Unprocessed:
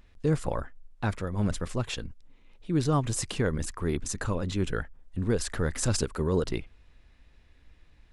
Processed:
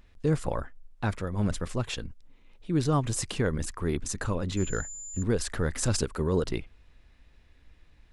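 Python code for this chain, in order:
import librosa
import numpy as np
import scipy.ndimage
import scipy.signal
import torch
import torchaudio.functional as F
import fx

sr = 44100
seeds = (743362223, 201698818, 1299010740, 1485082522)

y = fx.pwm(x, sr, carrier_hz=7100.0, at=(4.57, 5.23))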